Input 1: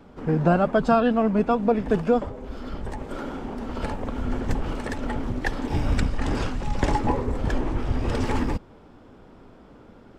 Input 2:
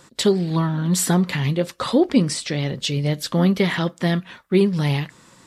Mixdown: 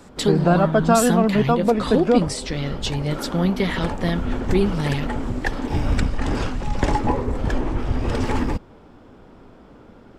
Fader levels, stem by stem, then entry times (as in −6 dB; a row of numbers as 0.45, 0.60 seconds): +2.5, −3.0 decibels; 0.00, 0.00 seconds